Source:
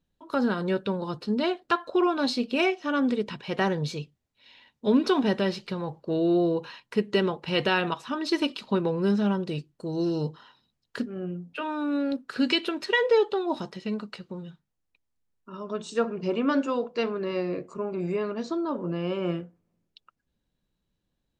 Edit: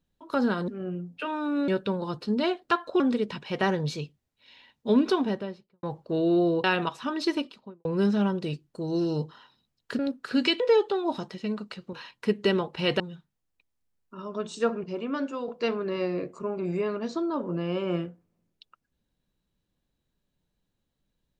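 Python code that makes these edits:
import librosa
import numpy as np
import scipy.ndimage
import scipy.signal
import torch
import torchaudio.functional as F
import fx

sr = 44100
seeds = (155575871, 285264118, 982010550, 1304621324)

y = fx.studio_fade_out(x, sr, start_s=4.92, length_s=0.89)
y = fx.studio_fade_out(y, sr, start_s=8.21, length_s=0.69)
y = fx.edit(y, sr, fx.cut(start_s=2.0, length_s=0.98),
    fx.move(start_s=6.62, length_s=1.07, to_s=14.35),
    fx.move(start_s=11.04, length_s=1.0, to_s=0.68),
    fx.cut(start_s=12.65, length_s=0.37),
    fx.clip_gain(start_s=16.19, length_s=0.64, db=-6.0), tone=tone)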